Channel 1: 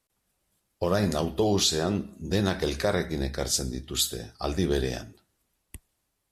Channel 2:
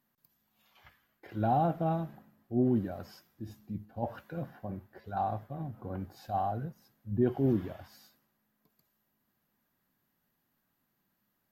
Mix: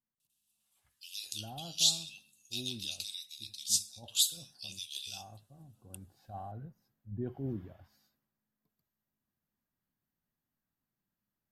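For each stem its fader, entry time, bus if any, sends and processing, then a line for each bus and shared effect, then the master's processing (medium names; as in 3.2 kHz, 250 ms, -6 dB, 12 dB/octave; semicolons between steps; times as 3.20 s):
-0.5 dB, 0.20 s, no send, rippled Chebyshev high-pass 2.6 kHz, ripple 3 dB
5.81 s -21 dB -> 6.24 s -13.5 dB, 0.00 s, no send, none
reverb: none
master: bass shelf 150 Hz +10.5 dB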